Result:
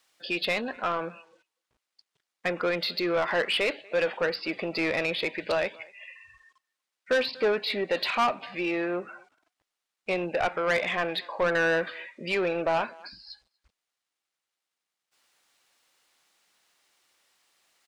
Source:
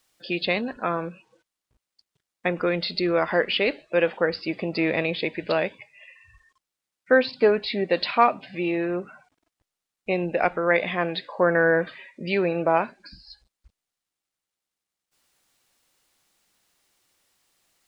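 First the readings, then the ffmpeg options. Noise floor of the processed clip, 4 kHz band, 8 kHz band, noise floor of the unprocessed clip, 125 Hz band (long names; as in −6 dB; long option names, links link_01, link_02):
below −85 dBFS, −0.5 dB, can't be measured, below −85 dBFS, −8.0 dB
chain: -filter_complex "[0:a]asplit=2[link_01][link_02];[link_02]adelay=240,highpass=300,lowpass=3400,asoftclip=type=hard:threshold=-13.5dB,volume=-28dB[link_03];[link_01][link_03]amix=inputs=2:normalize=0,aeval=exprs='0.355*(abs(mod(val(0)/0.355+3,4)-2)-1)':channel_layout=same,asplit=2[link_04][link_05];[link_05]highpass=frequency=720:poles=1,volume=17dB,asoftclip=type=tanh:threshold=-8.5dB[link_06];[link_04][link_06]amix=inputs=2:normalize=0,lowpass=frequency=4700:poles=1,volume=-6dB,volume=-8dB"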